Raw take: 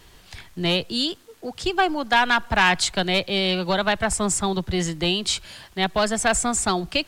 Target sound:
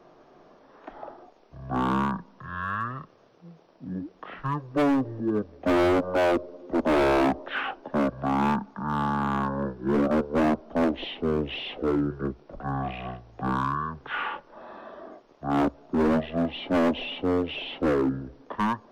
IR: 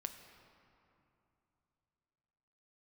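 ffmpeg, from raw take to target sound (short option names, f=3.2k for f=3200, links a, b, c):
-filter_complex "[0:a]acrossover=split=570 2300:gain=0.0631 1 0.126[a][b][c];[a][b][c]amix=inputs=3:normalize=0,asetrate=16493,aresample=44100,asoftclip=type=hard:threshold=-25dB,volume=5.5dB"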